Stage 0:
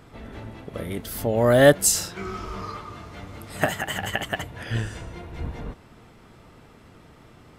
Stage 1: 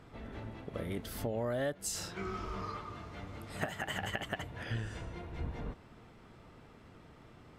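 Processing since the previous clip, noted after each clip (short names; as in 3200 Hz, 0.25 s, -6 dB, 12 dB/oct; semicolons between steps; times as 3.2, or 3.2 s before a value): high shelf 7600 Hz -9.5 dB; compressor 10:1, threshold -26 dBFS, peak gain reduction 17 dB; gain -6 dB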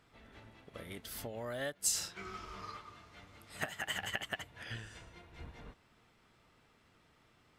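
tilt shelf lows -6 dB, about 1200 Hz; upward expander 1.5:1, over -49 dBFS; gain +1 dB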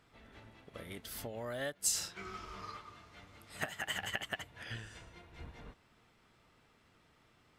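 nothing audible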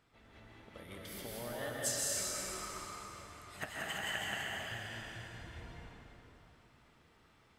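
plate-style reverb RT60 3.3 s, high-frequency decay 0.8×, pre-delay 0.115 s, DRR -4.5 dB; gain -4.5 dB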